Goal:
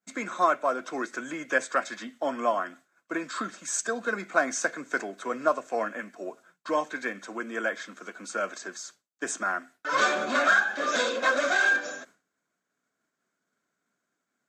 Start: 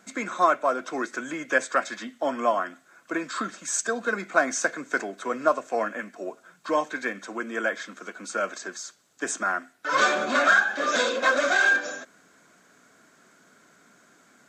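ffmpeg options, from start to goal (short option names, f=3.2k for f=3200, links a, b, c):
-af "agate=range=-33dB:threshold=-44dB:ratio=3:detection=peak,volume=-2.5dB"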